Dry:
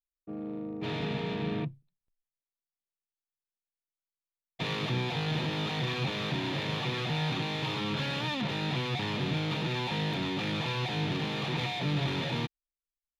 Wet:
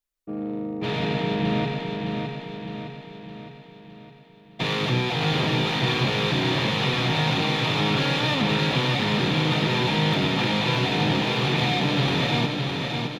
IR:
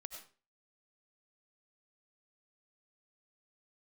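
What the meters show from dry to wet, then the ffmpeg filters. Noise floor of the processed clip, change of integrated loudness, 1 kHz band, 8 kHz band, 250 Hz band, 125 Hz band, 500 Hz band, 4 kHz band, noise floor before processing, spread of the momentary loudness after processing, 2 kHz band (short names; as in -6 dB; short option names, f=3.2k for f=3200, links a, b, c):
-49 dBFS, +9.0 dB, +10.0 dB, +9.5 dB, +9.0 dB, +8.0 dB, +10.0 dB, +10.0 dB, under -85 dBFS, 12 LU, +9.5 dB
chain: -filter_complex "[0:a]bandreject=f=50:t=h:w=6,bandreject=f=100:t=h:w=6,bandreject=f=150:t=h:w=6,aecho=1:1:612|1224|1836|2448|3060|3672|4284:0.596|0.316|0.167|0.0887|0.047|0.0249|0.0132,asplit=2[a][b];[1:a]atrim=start_sample=2205[c];[b][c]afir=irnorm=-1:irlink=0,volume=8.5dB[d];[a][d]amix=inputs=2:normalize=0"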